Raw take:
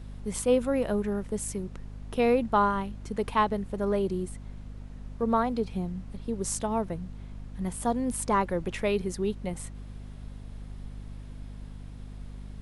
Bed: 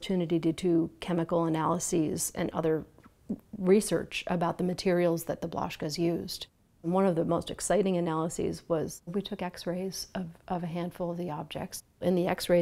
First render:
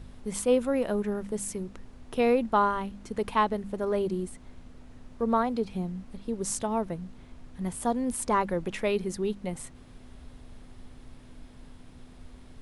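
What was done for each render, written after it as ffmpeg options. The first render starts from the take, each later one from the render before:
-af "bandreject=f=50:t=h:w=4,bandreject=f=100:t=h:w=4,bandreject=f=150:t=h:w=4,bandreject=f=200:t=h:w=4"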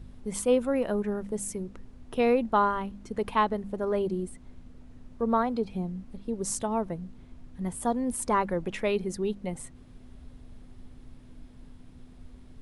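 -af "afftdn=nr=6:nf=-50"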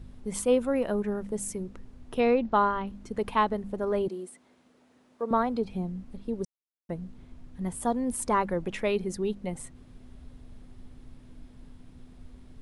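-filter_complex "[0:a]asettb=1/sr,asplit=3[s0][s1][s2];[s0]atrim=end=2.204[s3];[s1]atrim=start=2.2:end=2.87,asetpts=PTS-STARTPTS,afade=t=in:d=0.004:c=qsin,afade=t=out:st=0.666:d=0.004:c=qsin,lowpass=f=5900:w=0.5412,lowpass=f=5900:w=1.3066[s4];[s2]atrim=start=2.866[s5];[s3][s4]acrossfade=d=0.004:c1=hsin:c2=qsin[s6];[s6][s5]acrossfade=d=0.004:c1=qsin:c2=hsin,asettb=1/sr,asplit=3[s7][s8][s9];[s7]atrim=end=4.084[s10];[s8]atrim=start=4.08:end=5.31,asetpts=PTS-STARTPTS,afade=t=in:d=0.004:c=qsin,afade=t=out:st=1.226:d=0.004:c=qsin,highpass=390[s11];[s9]atrim=start=5.306[s12];[s10][s11]acrossfade=d=0.004:c1=hsin:c2=qsin[s13];[s13][s12]acrossfade=d=0.004:c1=qsin:c2=hsin,asplit=3[s14][s15][s16];[s14]atrim=end=6.45,asetpts=PTS-STARTPTS,afade=t=out:st=6.446:d=0.004:c=hsin[s17];[s15]atrim=start=6.45:end=6.89,asetpts=PTS-STARTPTS,volume=0[s18];[s16]atrim=start=6.89,asetpts=PTS-STARTPTS,afade=t=in:d=0.004:c=hsin[s19];[s17][s18][s19]concat=n=3:v=0:a=1"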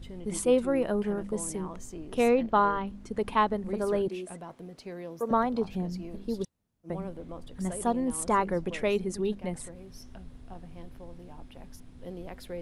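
-filter_complex "[1:a]volume=0.188[s0];[0:a][s0]amix=inputs=2:normalize=0"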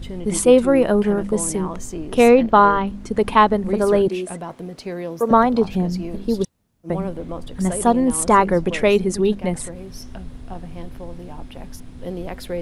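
-af "volume=3.76,alimiter=limit=0.794:level=0:latency=1"

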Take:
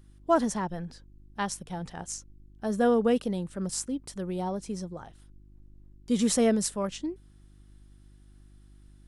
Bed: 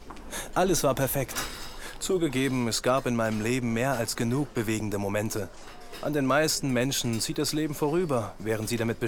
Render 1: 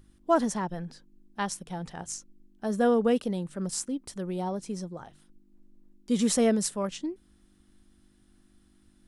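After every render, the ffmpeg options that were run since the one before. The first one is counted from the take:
-af "bandreject=f=50:t=h:w=4,bandreject=f=100:t=h:w=4,bandreject=f=150:t=h:w=4"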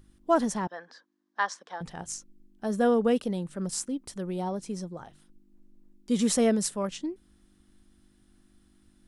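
-filter_complex "[0:a]asettb=1/sr,asplit=3[s0][s1][s2];[s0]atrim=end=0.674[s3];[s1]atrim=start=0.67:end=1.81,asetpts=PTS-STARTPTS,afade=t=in:d=0.004:c=qsin,afade=t=out:st=1.136:d=0.004:c=qsin,highpass=f=350:w=0.5412,highpass=f=350:w=1.3066,equalizer=f=370:t=q:w=4:g=-8,equalizer=f=1100:t=q:w=4:g=8,equalizer=f=1700:t=q:w=4:g=9,equalizer=f=2600:t=q:w=4:g=-7,lowpass=f=6200:w=0.5412,lowpass=f=6200:w=1.3066[s4];[s2]atrim=start=1.806[s5];[s3][s4]acrossfade=d=0.004:c1=hsin:c2=qsin[s6];[s6][s5]acrossfade=d=0.004:c1=qsin:c2=hsin"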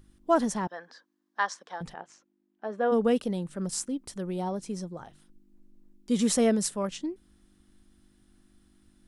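-filter_complex "[0:a]asplit=3[s0][s1][s2];[s0]afade=t=out:st=1.93:d=0.02[s3];[s1]highpass=420,lowpass=2200,afade=t=in:st=1.93:d=0.02,afade=t=out:st=2.91:d=0.02[s4];[s2]afade=t=in:st=2.91:d=0.02[s5];[s3][s4][s5]amix=inputs=3:normalize=0"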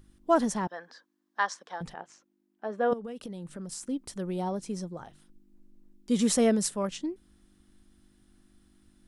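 -filter_complex "[0:a]asettb=1/sr,asplit=3[s0][s1][s2];[s0]atrim=end=2.934[s3];[s1]atrim=start=2.93:end=3.83,asetpts=PTS-STARTPTS,afade=t=in:d=0.004:c=qsin,afade=t=out:st=0.896:d=0.004:c=qsin,acompressor=threshold=0.0178:ratio=16:attack=3.2:release=140:knee=1:detection=peak[s4];[s2]atrim=start=3.826[s5];[s3][s4]acrossfade=d=0.004:c1=hsin:c2=qsin[s6];[s6][s5]acrossfade=d=0.004:c1=qsin:c2=hsin"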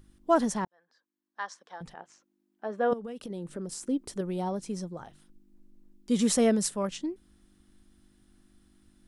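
-filter_complex "[0:a]asettb=1/sr,asplit=3[s0][s1][s2];[s0]atrim=end=3.304[s3];[s1]atrim=start=3.3:end=4.21,asetpts=PTS-STARTPTS,afade=t=in:d=0.004:c=qsin,afade=t=out:st=0.906:d=0.004:c=qsin,equalizer=f=400:w=1.5:g=8[s4];[s2]atrim=start=4.206[s5];[s3][s4]acrossfade=d=0.004:c1=hsin:c2=qsin[s6];[s6][s5]acrossfade=d=0.004:c1=qsin:c2=hsin,asplit=2[s7][s8];[s7]atrim=end=0.65,asetpts=PTS-STARTPTS,afade=t=out:st=0.646:d=0.004:c=hsin[s9];[s8]atrim=start=0.65,asetpts=PTS-STARTPTS,afade=t=in:d=2.05[s10];[s9][s10]concat=n=2:v=0:a=1"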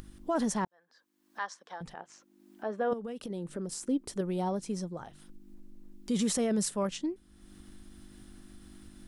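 -af "alimiter=limit=0.0794:level=0:latency=1:release=11,acompressor=mode=upward:threshold=0.0112:ratio=2.5"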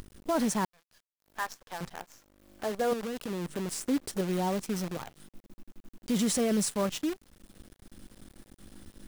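-filter_complex "[0:a]asplit=2[s0][s1];[s1]asoftclip=type=tanh:threshold=0.0224,volume=0.447[s2];[s0][s2]amix=inputs=2:normalize=0,acrusher=bits=7:dc=4:mix=0:aa=0.000001"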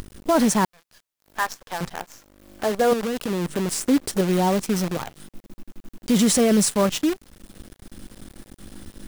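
-af "volume=2.99"

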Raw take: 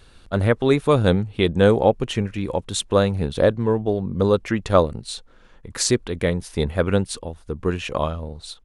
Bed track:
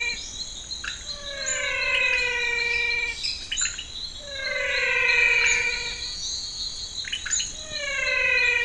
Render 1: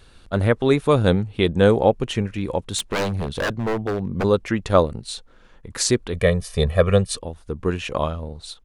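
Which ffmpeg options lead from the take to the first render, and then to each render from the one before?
-filter_complex "[0:a]asplit=3[s0][s1][s2];[s0]afade=t=out:st=2.77:d=0.02[s3];[s1]aeval=exprs='0.141*(abs(mod(val(0)/0.141+3,4)-2)-1)':c=same,afade=t=in:st=2.77:d=0.02,afade=t=out:st=4.23:d=0.02[s4];[s2]afade=t=in:st=4.23:d=0.02[s5];[s3][s4][s5]amix=inputs=3:normalize=0,asettb=1/sr,asplit=3[s6][s7][s8];[s6]atrim=end=6.134[s9];[s7]atrim=start=6.13:end=7.17,asetpts=PTS-STARTPTS,afade=t=in:d=0.004:c=qsin,afade=t=out:st=1.036:d=0.004:c=qsin,aecho=1:1:1.7:0.96,atrim=end_sample=45864[s10];[s8]atrim=start=7.166[s11];[s9][s10]acrossfade=d=0.004:c1=hsin:c2=qsin[s12];[s12][s11]acrossfade=d=0.004:c1=qsin:c2=hsin"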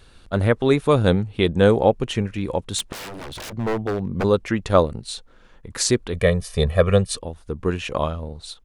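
-filter_complex "[0:a]asettb=1/sr,asplit=3[s0][s1][s2];[s0]atrim=end=2.924[s3];[s1]atrim=start=2.92:end=3.53,asetpts=PTS-STARTPTS,afade=t=in:d=0.004:c=qsin,afade=t=out:st=0.606:d=0.004:c=qsin,aeval=exprs='0.0335*(abs(mod(val(0)/0.0335+3,4)-2)-1)':c=same[s4];[s2]atrim=start=3.526[s5];[s3][s4]acrossfade=d=0.004:c1=hsin:c2=qsin[s6];[s6][s5]acrossfade=d=0.004:c1=qsin:c2=hsin"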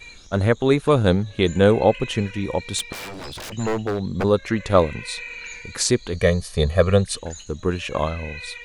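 -filter_complex "[1:a]volume=0.168[s0];[0:a][s0]amix=inputs=2:normalize=0"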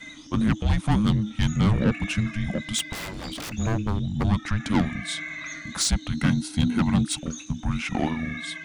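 -af "asoftclip=type=tanh:threshold=0.168,afreqshift=-320"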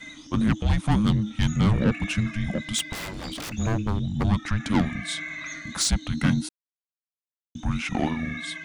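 -filter_complex "[0:a]asplit=3[s0][s1][s2];[s0]atrim=end=6.49,asetpts=PTS-STARTPTS,afade=t=out:st=6.486:d=0.004:c=hsin[s3];[s1]atrim=start=6.49:end=7.55,asetpts=PTS-STARTPTS,volume=0[s4];[s2]atrim=start=7.55,asetpts=PTS-STARTPTS,afade=t=in:d=0.004:c=hsin[s5];[s3][s4][s5]concat=n=3:v=0:a=1"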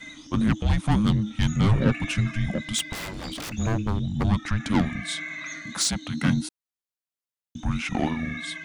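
-filter_complex "[0:a]asettb=1/sr,asplit=3[s0][s1][s2];[s0]atrim=end=1.634[s3];[s1]atrim=start=1.63:end=2.46,asetpts=PTS-STARTPTS,afade=t=in:d=0.004:c=qsin,afade=t=out:st=0.826:d=0.004:c=qsin,aecho=1:1:7.5:0.53,atrim=end_sample=36603[s4];[s2]atrim=start=2.456[s5];[s3][s4]acrossfade=d=0.004:c1=hsin:c2=qsin[s6];[s6][s5]acrossfade=d=0.004:c1=qsin:c2=hsin,asettb=1/sr,asplit=3[s7][s8][s9];[s7]atrim=end=5.134[s10];[s8]atrim=start=5.13:end=6.28,asetpts=PTS-STARTPTS,afade=t=in:d=0.004:c=qsin,afade=t=out:st=1.146:d=0.004:c=qsin,highpass=130[s11];[s9]atrim=start=6.276[s12];[s10][s11]acrossfade=d=0.004:c1=hsin:c2=qsin[s13];[s13][s12]acrossfade=d=0.004:c1=qsin:c2=hsin"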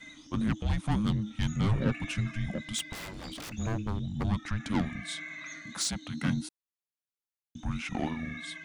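-af "volume=0.447"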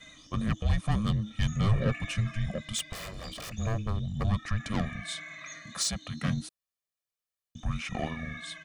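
-af "aecho=1:1:1.7:0.61"

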